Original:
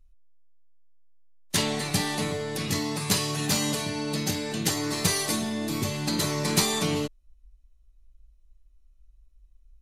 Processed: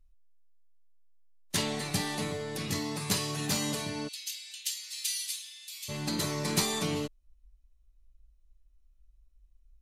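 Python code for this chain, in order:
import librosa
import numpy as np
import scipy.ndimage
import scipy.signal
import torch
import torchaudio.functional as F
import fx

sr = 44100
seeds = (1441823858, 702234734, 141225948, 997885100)

y = fx.cheby1_highpass(x, sr, hz=2800.0, order=3, at=(4.07, 5.88), fade=0.02)
y = y * librosa.db_to_amplitude(-5.0)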